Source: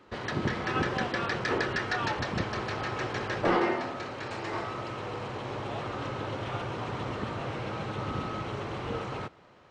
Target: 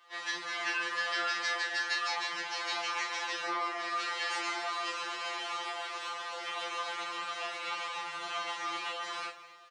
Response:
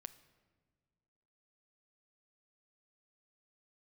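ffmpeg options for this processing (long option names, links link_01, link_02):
-filter_complex "[0:a]dynaudnorm=framelen=210:gausssize=5:maxgain=8.5dB,asettb=1/sr,asplit=3[link_01][link_02][link_03];[link_01]atrim=end=5.684[link_04];[link_02]atrim=start=5.68:end=6.57,asetpts=PTS-STARTPTS,afade=type=in:duration=0.004:curve=qsin,afade=type=out:start_time=0.886:duration=0.004:curve=qsin,aeval=exprs='(tanh(14.1*val(0)+0.55)-tanh(0.55))/14.1':channel_layout=same[link_05];[link_03]atrim=start=6.566[link_06];[link_04][link_05]acrossfade=duration=0.004:curve1=hsin:curve2=qsin[link_07];[link_07][link_06]acrossfade=duration=0.004:curve1=qsin:curve2=hsin,flanger=delay=15.5:depth=2.7:speed=1.9[link_08];[1:a]atrim=start_sample=2205,afade=type=out:start_time=0.37:duration=0.01,atrim=end_sample=16758[link_09];[link_08][link_09]afir=irnorm=-1:irlink=0,acompressor=threshold=-35dB:ratio=12,highpass=810,highshelf=frequency=2600:gain=10,aecho=1:1:20|39:0.473|0.447,afftfilt=real='re*2.83*eq(mod(b,8),0)':imag='im*2.83*eq(mod(b,8),0)':win_size=2048:overlap=0.75,volume=6dB"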